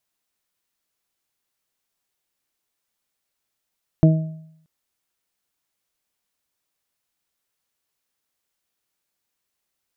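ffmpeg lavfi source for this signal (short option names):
-f lavfi -i "aevalsrc='0.398*pow(10,-3*t/0.73)*sin(2*PI*159*t)+0.2*pow(10,-3*t/0.4)*sin(2*PI*318*t)+0.0447*pow(10,-3*t/0.4)*sin(2*PI*477*t)+0.106*pow(10,-3*t/0.57)*sin(2*PI*636*t)':d=0.63:s=44100"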